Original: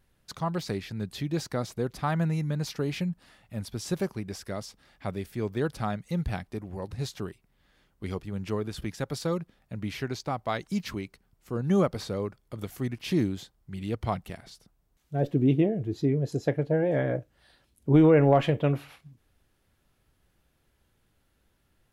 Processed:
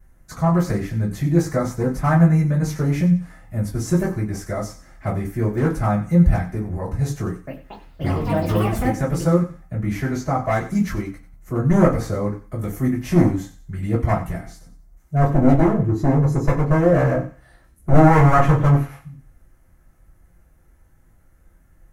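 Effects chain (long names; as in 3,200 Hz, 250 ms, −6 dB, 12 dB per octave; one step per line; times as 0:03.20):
wavefolder on the positive side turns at −21.5 dBFS
flat-topped bell 3,600 Hz −12 dB 1.2 octaves
0:07.24–0:09.85: delay with pitch and tempo change per echo 231 ms, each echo +7 semitones, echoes 2
feedback echo with a high-pass in the loop 92 ms, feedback 34%, high-pass 980 Hz, level −12.5 dB
convolution reverb RT60 0.20 s, pre-delay 3 ms, DRR −8 dB
level −1 dB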